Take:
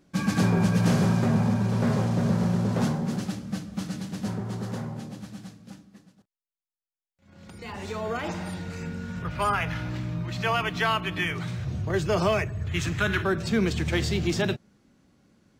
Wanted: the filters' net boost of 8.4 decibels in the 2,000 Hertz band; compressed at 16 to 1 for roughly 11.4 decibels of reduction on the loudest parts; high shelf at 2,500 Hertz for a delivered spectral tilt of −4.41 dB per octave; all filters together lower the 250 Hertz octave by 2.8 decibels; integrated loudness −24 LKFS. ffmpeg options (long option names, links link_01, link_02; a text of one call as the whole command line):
ffmpeg -i in.wav -af "equalizer=frequency=250:width_type=o:gain=-4.5,equalizer=frequency=2000:width_type=o:gain=7.5,highshelf=frequency=2500:gain=7.5,acompressor=threshold=-27dB:ratio=16,volume=8dB" out.wav